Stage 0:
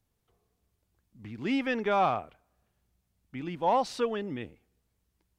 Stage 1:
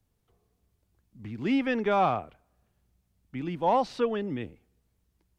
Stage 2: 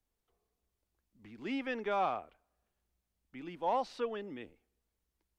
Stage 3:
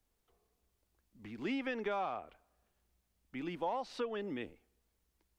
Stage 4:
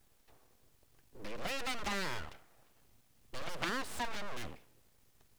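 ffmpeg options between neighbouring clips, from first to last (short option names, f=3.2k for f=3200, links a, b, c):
-filter_complex "[0:a]lowshelf=f=460:g=4.5,acrossover=split=260|4600[a][b][c];[c]alimiter=level_in=22.5dB:limit=-24dB:level=0:latency=1:release=381,volume=-22.5dB[d];[a][b][d]amix=inputs=3:normalize=0"
-af "equalizer=f=120:w=0.85:g=-14,volume=-7dB"
-af "acompressor=threshold=-39dB:ratio=5,volume=5dB"
-af "aeval=exprs='abs(val(0))':c=same,aeval=exprs='0.0631*(cos(1*acos(clip(val(0)/0.0631,-1,1)))-cos(1*PI/2))+0.0251*(cos(4*acos(clip(val(0)/0.0631,-1,1)))-cos(4*PI/2))':c=same,volume=12.5dB"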